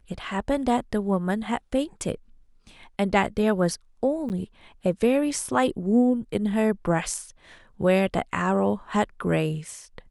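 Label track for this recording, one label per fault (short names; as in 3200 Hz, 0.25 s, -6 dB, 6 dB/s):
4.290000	4.300000	gap 9.4 ms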